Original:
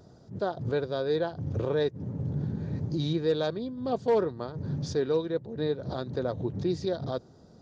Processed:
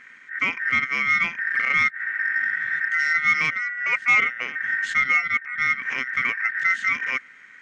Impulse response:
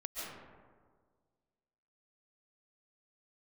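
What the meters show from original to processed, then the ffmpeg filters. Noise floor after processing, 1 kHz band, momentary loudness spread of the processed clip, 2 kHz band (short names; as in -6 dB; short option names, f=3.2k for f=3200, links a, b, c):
-48 dBFS, +9.0 dB, 6 LU, +28.0 dB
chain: -af "aeval=exprs='val(0)*sin(2*PI*1700*n/s)':c=same,equalizer=f=125:t=o:w=1:g=8,equalizer=f=250:t=o:w=1:g=10,equalizer=f=500:t=o:w=1:g=5,equalizer=f=1k:t=o:w=1:g=-6,equalizer=f=2k:t=o:w=1:g=10,equalizer=f=4k:t=o:w=1:g=5,acontrast=90,volume=-5dB"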